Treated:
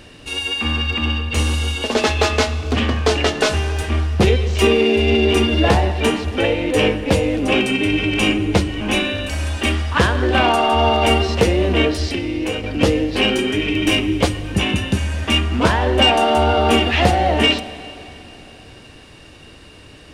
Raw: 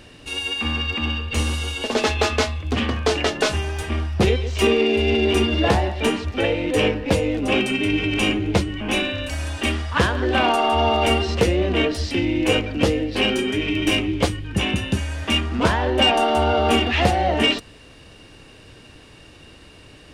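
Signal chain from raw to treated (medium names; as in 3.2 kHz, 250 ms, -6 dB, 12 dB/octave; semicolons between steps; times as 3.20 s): 12.08–12.64 s: compression 6:1, threshold -23 dBFS, peak gain reduction 9 dB; plate-style reverb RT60 3.5 s, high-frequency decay 0.95×, DRR 13.5 dB; trim +3 dB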